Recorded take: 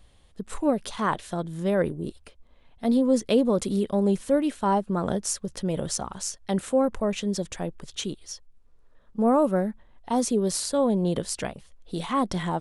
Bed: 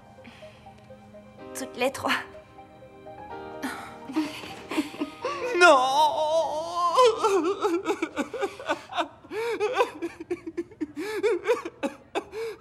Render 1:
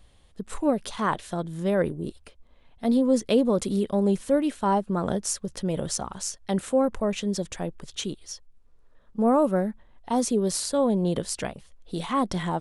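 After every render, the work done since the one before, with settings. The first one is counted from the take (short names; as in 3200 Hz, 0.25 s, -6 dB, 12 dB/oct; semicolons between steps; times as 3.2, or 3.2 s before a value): nothing audible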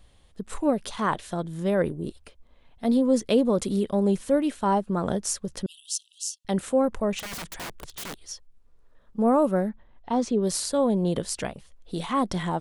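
5.66–6.45 brick-wall FIR high-pass 2600 Hz; 7.19–8.25 wrapped overs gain 30.5 dB; 9.69–10.43 air absorption 120 m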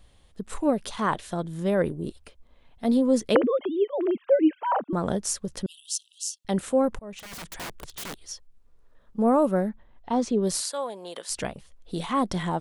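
3.35–4.93 sine-wave speech; 6.99–7.6 fade in, from -23.5 dB; 10.61–11.3 HPF 810 Hz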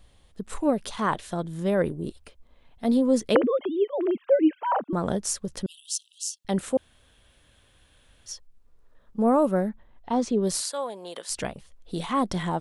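6.77–8.26 room tone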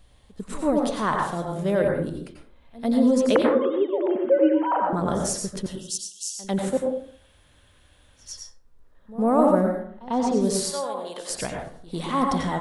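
pre-echo 98 ms -19 dB; plate-style reverb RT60 0.56 s, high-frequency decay 0.45×, pre-delay 80 ms, DRR 1 dB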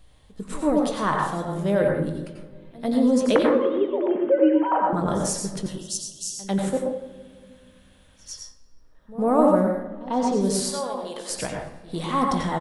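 doubler 20 ms -12 dB; shoebox room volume 2800 m³, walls mixed, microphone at 0.56 m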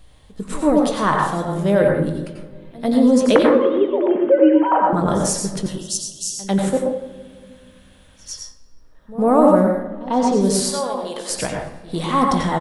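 gain +5.5 dB; limiter -2 dBFS, peak gain reduction 2 dB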